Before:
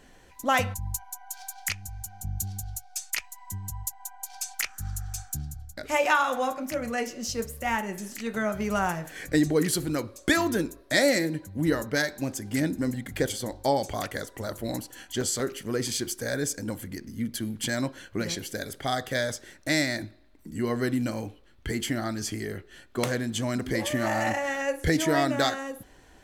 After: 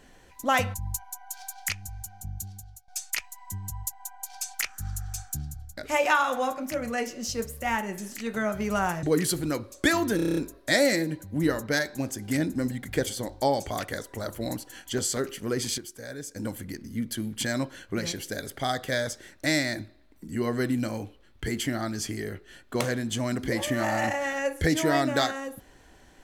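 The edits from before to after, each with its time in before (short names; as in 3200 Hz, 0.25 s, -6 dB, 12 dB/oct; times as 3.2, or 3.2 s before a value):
1.91–2.88 fade out linear, to -18 dB
9.03–9.47 cut
10.6 stutter 0.03 s, 8 plays
16.01–16.59 gain -9.5 dB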